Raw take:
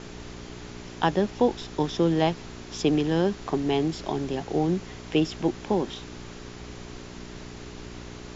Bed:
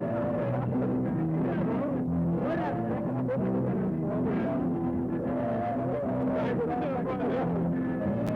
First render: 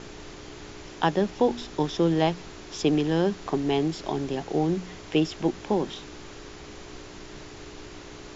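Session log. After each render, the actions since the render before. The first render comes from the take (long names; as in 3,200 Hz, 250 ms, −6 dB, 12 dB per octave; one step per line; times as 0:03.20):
hum removal 60 Hz, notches 4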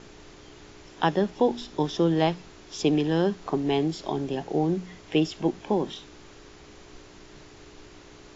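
noise reduction from a noise print 6 dB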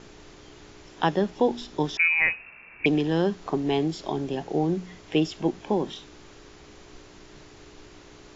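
0:01.97–0:02.86: voice inversion scrambler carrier 2,700 Hz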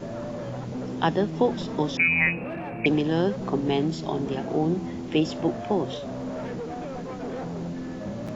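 mix in bed −4.5 dB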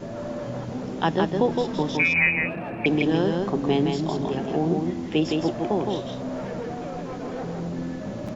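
single-tap delay 163 ms −3.5 dB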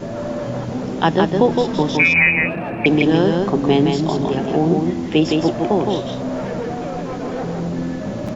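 level +7 dB
brickwall limiter −3 dBFS, peak gain reduction 1.5 dB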